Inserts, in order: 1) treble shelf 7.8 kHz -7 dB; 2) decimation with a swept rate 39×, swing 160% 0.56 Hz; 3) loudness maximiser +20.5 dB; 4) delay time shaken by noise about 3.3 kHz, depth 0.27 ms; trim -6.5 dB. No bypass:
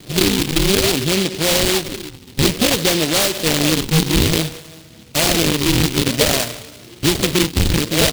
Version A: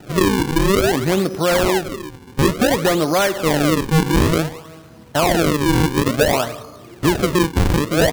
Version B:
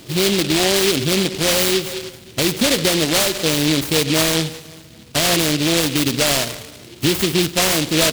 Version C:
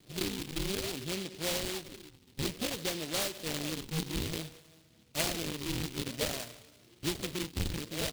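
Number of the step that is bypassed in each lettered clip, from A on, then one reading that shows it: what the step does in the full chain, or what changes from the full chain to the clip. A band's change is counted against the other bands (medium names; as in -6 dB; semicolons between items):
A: 4, 4 kHz band -8.5 dB; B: 2, 125 Hz band -3.5 dB; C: 3, crest factor change +8.5 dB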